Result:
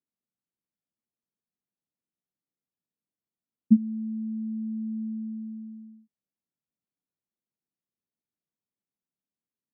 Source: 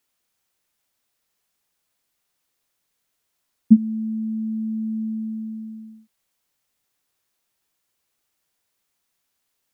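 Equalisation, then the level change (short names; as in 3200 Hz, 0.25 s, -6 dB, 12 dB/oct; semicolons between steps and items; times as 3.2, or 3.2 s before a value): band-pass 200 Hz, Q 1.5; -5.5 dB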